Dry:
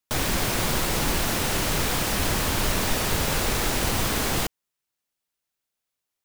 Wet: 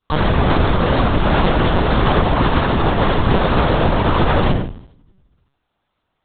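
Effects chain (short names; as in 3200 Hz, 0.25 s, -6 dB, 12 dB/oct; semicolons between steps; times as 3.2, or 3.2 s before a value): de-hum 55.73 Hz, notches 5; negative-ratio compressor -29 dBFS, ratio -1; frequency shift +23 Hz; reverb RT60 0.55 s, pre-delay 3 ms, DRR -10.5 dB; LPC vocoder at 8 kHz pitch kept; gain -6 dB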